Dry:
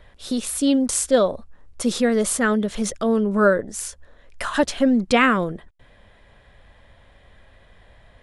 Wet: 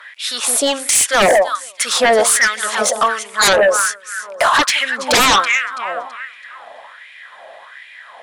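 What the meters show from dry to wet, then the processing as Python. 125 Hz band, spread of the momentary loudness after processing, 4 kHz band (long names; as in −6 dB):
−5.0 dB, 13 LU, +14.5 dB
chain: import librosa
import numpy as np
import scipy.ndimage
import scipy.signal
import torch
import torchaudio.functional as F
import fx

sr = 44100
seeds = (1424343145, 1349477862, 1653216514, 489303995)

y = fx.echo_alternate(x, sr, ms=165, hz=940.0, feedback_pct=59, wet_db=-9.0)
y = fx.filter_lfo_highpass(y, sr, shape='sine', hz=1.3, low_hz=650.0, high_hz=2300.0, q=4.6)
y = fx.fold_sine(y, sr, drive_db=17, ceiling_db=0.5)
y = y * librosa.db_to_amplitude(-8.5)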